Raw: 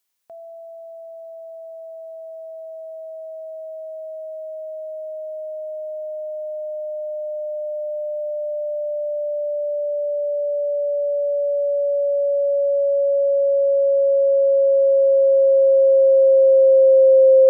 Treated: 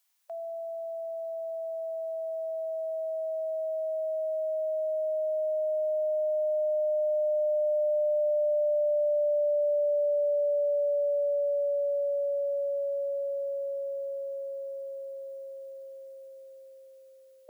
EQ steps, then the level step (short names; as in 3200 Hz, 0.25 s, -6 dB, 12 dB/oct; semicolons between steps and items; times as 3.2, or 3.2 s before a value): brick-wall FIR high-pass 580 Hz; +1.5 dB